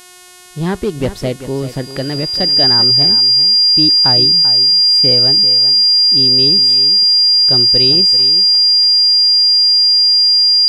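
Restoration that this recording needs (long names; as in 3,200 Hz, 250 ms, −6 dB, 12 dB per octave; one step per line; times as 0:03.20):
hum removal 361.4 Hz, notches 33
notch filter 4,800 Hz, Q 30
echo removal 390 ms −12.5 dB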